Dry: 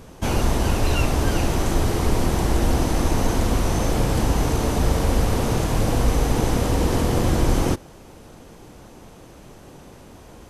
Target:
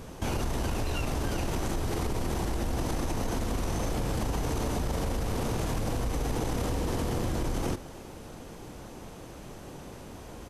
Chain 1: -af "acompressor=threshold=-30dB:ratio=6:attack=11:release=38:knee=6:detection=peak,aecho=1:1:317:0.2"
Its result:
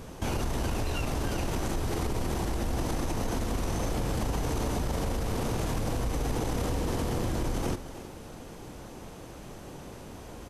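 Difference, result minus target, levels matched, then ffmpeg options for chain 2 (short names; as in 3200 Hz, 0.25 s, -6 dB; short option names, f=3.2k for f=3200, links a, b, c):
echo-to-direct +6.5 dB
-af "acompressor=threshold=-30dB:ratio=6:attack=11:release=38:knee=6:detection=peak,aecho=1:1:317:0.0944"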